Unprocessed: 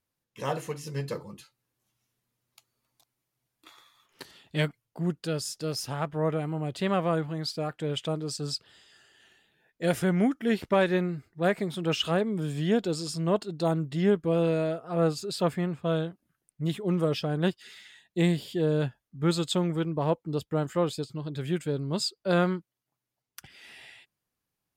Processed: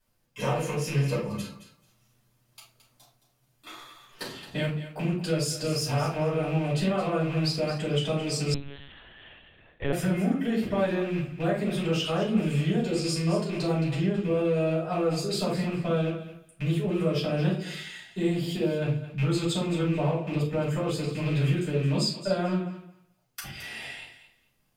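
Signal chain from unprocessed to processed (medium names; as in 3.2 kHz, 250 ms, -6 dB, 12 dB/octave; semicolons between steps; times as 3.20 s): rattle on loud lows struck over -38 dBFS, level -33 dBFS; peak limiter -19 dBFS, peak gain reduction 5.5 dB; compression 5:1, threshold -37 dBFS, peak gain reduction 13 dB; thinning echo 219 ms, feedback 18%, high-pass 480 Hz, level -12 dB; simulated room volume 240 m³, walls furnished, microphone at 6.3 m; 8.54–9.93 s: monotone LPC vocoder at 8 kHz 140 Hz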